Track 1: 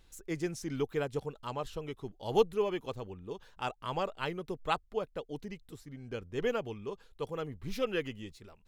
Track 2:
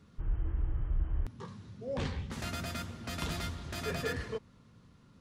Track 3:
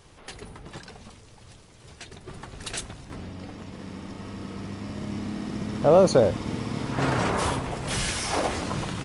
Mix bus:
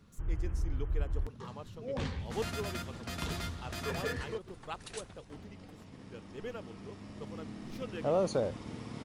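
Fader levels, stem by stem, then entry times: -10.5 dB, -1.0 dB, -12.5 dB; 0.00 s, 0.00 s, 2.20 s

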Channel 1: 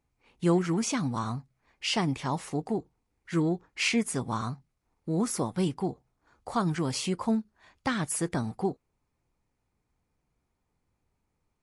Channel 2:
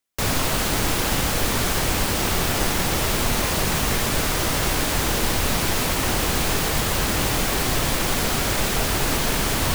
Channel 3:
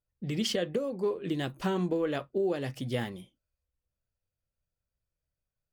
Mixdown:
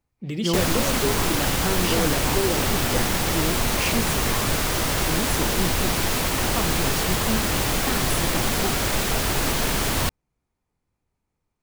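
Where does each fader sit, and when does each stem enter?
-1.0 dB, -1.0 dB, +3.0 dB; 0.00 s, 0.35 s, 0.00 s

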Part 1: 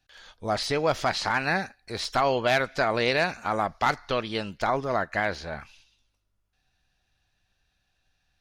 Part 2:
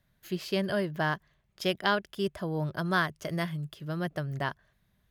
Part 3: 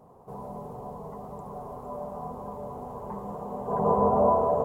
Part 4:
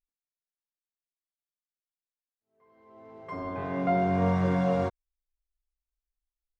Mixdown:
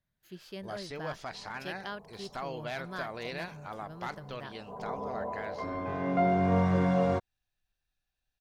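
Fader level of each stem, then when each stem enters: -15.0 dB, -13.5 dB, -15.5 dB, -0.5 dB; 0.20 s, 0.00 s, 1.00 s, 2.30 s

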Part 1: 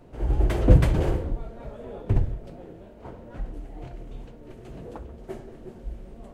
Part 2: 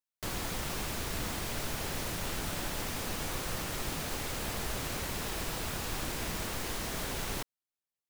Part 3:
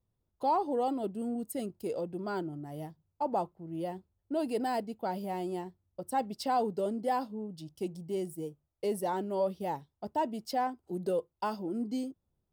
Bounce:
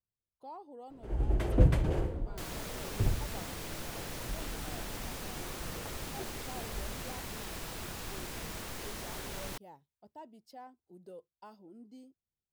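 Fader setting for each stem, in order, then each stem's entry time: -7.5 dB, -5.5 dB, -18.5 dB; 0.90 s, 2.15 s, 0.00 s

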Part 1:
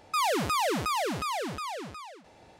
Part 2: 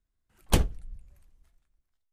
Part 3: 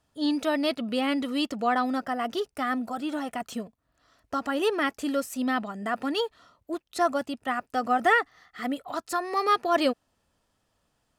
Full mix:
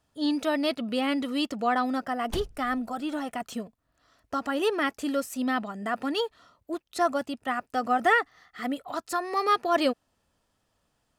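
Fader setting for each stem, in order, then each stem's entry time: mute, -12.0 dB, -0.5 dB; mute, 1.80 s, 0.00 s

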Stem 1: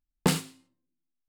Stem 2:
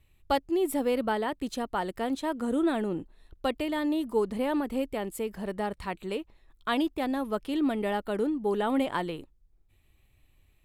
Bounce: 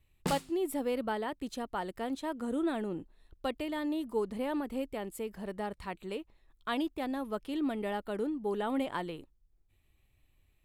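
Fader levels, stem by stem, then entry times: -10.0 dB, -5.5 dB; 0.00 s, 0.00 s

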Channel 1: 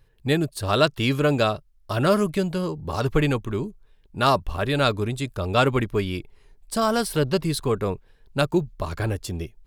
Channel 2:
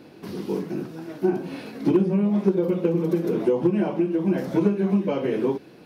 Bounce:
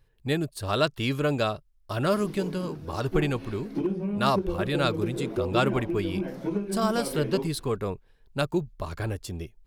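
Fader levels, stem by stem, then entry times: -5.0 dB, -8.5 dB; 0.00 s, 1.90 s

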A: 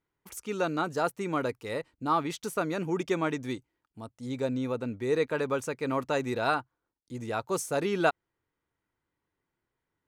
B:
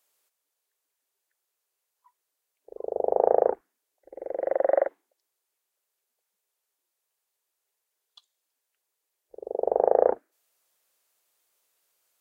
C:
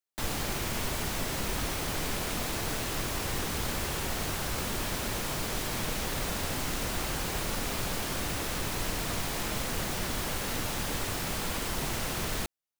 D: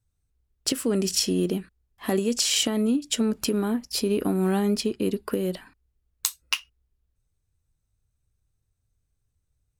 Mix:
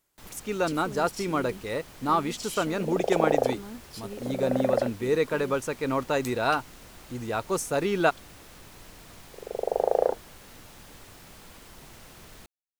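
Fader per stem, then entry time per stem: +2.5 dB, -3.0 dB, -16.0 dB, -16.0 dB; 0.00 s, 0.00 s, 0.00 s, 0.00 s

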